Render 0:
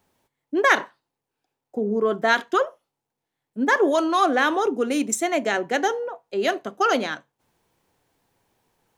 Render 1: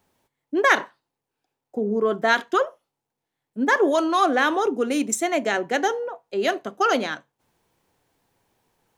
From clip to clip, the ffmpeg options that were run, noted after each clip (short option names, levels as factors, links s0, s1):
-af anull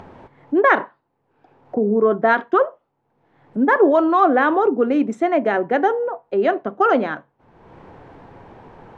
-filter_complex "[0:a]lowpass=1400,asplit=2[s0][s1];[s1]acompressor=mode=upward:threshold=0.0794:ratio=2.5,volume=1.41[s2];[s0][s2]amix=inputs=2:normalize=0,volume=0.794"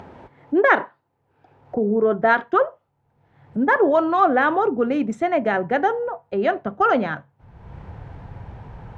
-af "asubboost=boost=10.5:cutoff=97,highpass=44,bandreject=f=1100:w=18"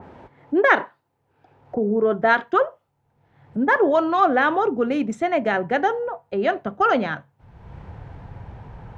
-af "adynamicequalizer=threshold=0.0224:dfrequency=2300:dqfactor=0.7:tfrequency=2300:tqfactor=0.7:attack=5:release=100:ratio=0.375:range=3:mode=boostabove:tftype=highshelf,volume=0.891"